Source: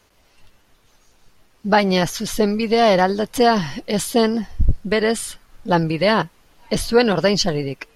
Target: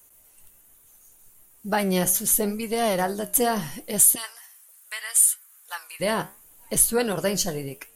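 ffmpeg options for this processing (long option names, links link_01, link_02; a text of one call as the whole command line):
ffmpeg -i in.wav -filter_complex "[0:a]aexciter=amount=11.1:drive=7.3:freq=7300,asettb=1/sr,asplit=3[link_01][link_02][link_03];[link_01]atrim=end=4.154[link_04];[link_02]atrim=start=4.15:end=6,asetpts=PTS-STARTPTS,afade=type=in:duration=0.004:curve=qsin,afade=type=out:start_time=1.846:duration=0.004:curve=qsin,highpass=frequency=1100:width=0.5412,highpass=frequency=1100:width=1.3066[link_05];[link_03]atrim=start=5.996[link_06];[link_04][link_05]acrossfade=duration=0.004:curve1=hsin:curve2=qsin[link_07];[link_07][link_06]acrossfade=duration=0.004:curve1=qsin:curve2=hsin,flanger=delay=7.4:depth=9.2:regen=74:speed=0.74:shape=sinusoidal,volume=-4dB" out.wav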